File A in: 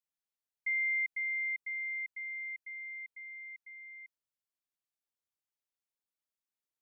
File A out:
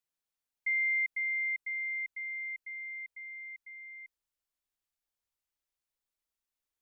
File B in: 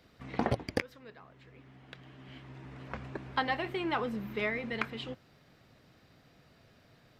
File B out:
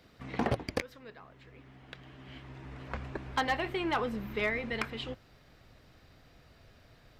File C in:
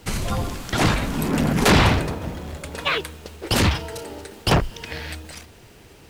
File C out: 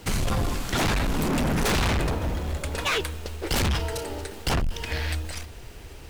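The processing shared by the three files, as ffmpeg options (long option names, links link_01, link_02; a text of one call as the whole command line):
ffmpeg -i in.wav -af "asubboost=boost=5:cutoff=68,aeval=exprs='0.891*(cos(1*acos(clip(val(0)/0.891,-1,1)))-cos(1*PI/2))+0.2*(cos(2*acos(clip(val(0)/0.891,-1,1)))-cos(2*PI/2))+0.0224*(cos(4*acos(clip(val(0)/0.891,-1,1)))-cos(4*PI/2))+0.224*(cos(5*acos(clip(val(0)/0.891,-1,1)))-cos(5*PI/2))':channel_layout=same,asoftclip=type=hard:threshold=-16.5dB,volume=-5dB" out.wav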